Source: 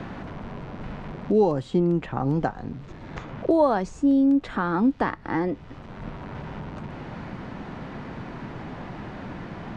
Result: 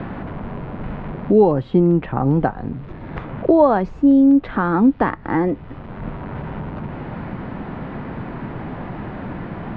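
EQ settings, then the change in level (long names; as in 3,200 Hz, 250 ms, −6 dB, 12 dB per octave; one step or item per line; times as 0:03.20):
high-frequency loss of the air 360 metres
+7.5 dB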